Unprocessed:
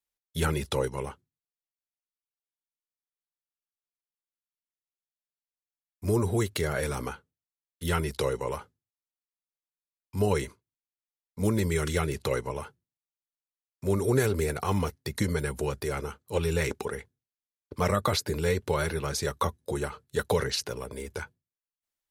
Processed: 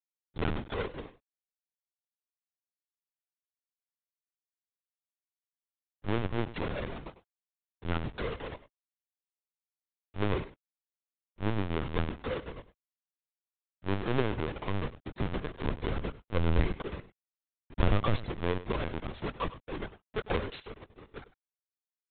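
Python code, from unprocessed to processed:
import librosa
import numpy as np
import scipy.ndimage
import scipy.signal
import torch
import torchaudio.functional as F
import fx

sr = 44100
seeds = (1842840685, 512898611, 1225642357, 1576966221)

y = fx.halfwave_hold(x, sr)
y = fx.low_shelf(y, sr, hz=140.0, db=10.5, at=(15.64, 18.27))
y = np.sign(y) * np.maximum(np.abs(y) - 10.0 ** (-32.0 / 20.0), 0.0)
y = y + 10.0 ** (-15.5 / 20.0) * np.pad(y, (int(100 * sr / 1000.0), 0))[:len(y)]
y = fx.lpc_vocoder(y, sr, seeds[0], excitation='pitch_kept', order=16)
y = y * librosa.db_to_amplitude(-7.0)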